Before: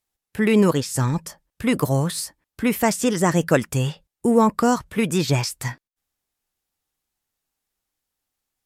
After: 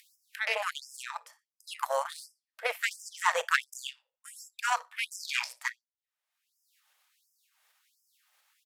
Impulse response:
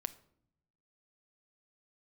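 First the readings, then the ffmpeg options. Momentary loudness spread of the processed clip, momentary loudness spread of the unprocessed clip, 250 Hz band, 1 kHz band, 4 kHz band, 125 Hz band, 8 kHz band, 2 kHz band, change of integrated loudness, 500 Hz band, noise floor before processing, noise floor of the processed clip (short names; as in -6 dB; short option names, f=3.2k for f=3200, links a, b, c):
17 LU, 11 LU, under -40 dB, -7.5 dB, -5.5 dB, under -40 dB, -11.5 dB, -1.5 dB, -11.0 dB, -16.5 dB, under -85 dBFS, under -85 dBFS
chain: -filter_complex "[0:a]bass=f=250:g=6,treble=f=4k:g=-10,acrossover=split=920[a][b];[b]acontrast=85[c];[a][c]amix=inputs=2:normalize=0[d];[1:a]atrim=start_sample=2205,asetrate=83790,aresample=44100[e];[d][e]afir=irnorm=-1:irlink=0,asubboost=boost=6:cutoff=170,asplit=2[f][g];[g]aecho=0:1:60|120:0.188|0.0301[h];[f][h]amix=inputs=2:normalize=0,aeval=exprs='0.596*(cos(1*acos(clip(val(0)/0.596,-1,1)))-cos(1*PI/2))+0.075*(cos(4*acos(clip(val(0)/0.596,-1,1)))-cos(4*PI/2))+0.0299*(cos(5*acos(clip(val(0)/0.596,-1,1)))-cos(5*PI/2))+0.0841*(cos(7*acos(clip(val(0)/0.596,-1,1)))-cos(7*PI/2))':c=same,acompressor=mode=upward:threshold=-32dB:ratio=2.5,afftfilt=real='re*gte(b*sr/1024,440*pow(5000/440,0.5+0.5*sin(2*PI*1.4*pts/sr)))':imag='im*gte(b*sr/1024,440*pow(5000/440,0.5+0.5*sin(2*PI*1.4*pts/sr)))':win_size=1024:overlap=0.75"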